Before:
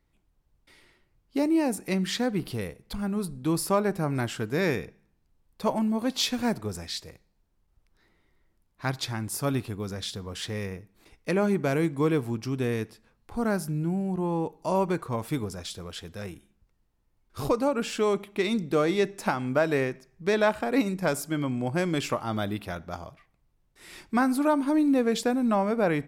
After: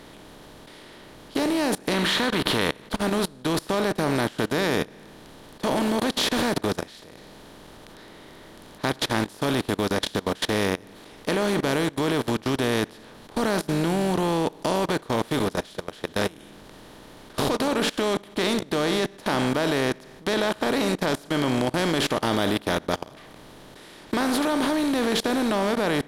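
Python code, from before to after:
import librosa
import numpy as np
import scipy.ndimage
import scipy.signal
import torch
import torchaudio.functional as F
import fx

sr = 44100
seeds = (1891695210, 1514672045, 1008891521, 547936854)

y = fx.spec_box(x, sr, start_s=1.95, length_s=0.93, low_hz=880.0, high_hz=4400.0, gain_db=12)
y = fx.bin_compress(y, sr, power=0.4)
y = fx.level_steps(y, sr, step_db=23)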